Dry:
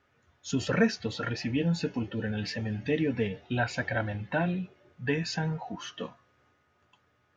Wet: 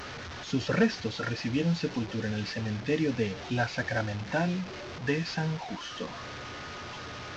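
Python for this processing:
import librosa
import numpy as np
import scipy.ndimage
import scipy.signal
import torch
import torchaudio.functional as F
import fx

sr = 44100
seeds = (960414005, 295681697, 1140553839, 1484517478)

y = fx.delta_mod(x, sr, bps=32000, step_db=-34.5)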